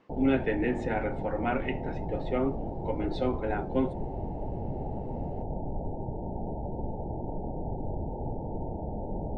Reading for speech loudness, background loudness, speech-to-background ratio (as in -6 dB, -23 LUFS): -31.5 LUFS, -36.5 LUFS, 5.0 dB